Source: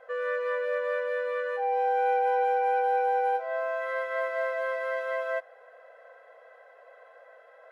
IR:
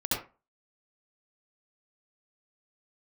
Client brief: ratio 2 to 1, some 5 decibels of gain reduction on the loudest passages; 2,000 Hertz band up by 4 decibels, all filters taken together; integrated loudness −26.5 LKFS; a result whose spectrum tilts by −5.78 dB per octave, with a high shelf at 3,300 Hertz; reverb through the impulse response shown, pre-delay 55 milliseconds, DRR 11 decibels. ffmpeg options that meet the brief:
-filter_complex "[0:a]equalizer=frequency=2000:width_type=o:gain=6.5,highshelf=frequency=3300:gain=-4,acompressor=threshold=-31dB:ratio=2,asplit=2[link_01][link_02];[1:a]atrim=start_sample=2205,adelay=55[link_03];[link_02][link_03]afir=irnorm=-1:irlink=0,volume=-19dB[link_04];[link_01][link_04]amix=inputs=2:normalize=0,volume=3.5dB"

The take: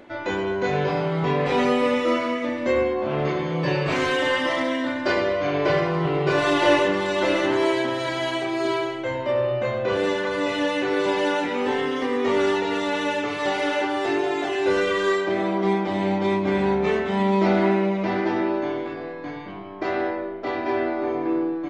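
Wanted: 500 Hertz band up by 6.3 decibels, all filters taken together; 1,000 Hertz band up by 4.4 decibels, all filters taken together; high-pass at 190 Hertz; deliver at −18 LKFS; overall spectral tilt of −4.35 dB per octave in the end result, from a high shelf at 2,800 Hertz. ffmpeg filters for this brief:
ffmpeg -i in.wav -af "highpass=190,equalizer=frequency=500:width_type=o:gain=7.5,equalizer=frequency=1000:width_type=o:gain=4,highshelf=frequency=2800:gain=-8.5,volume=1dB" out.wav

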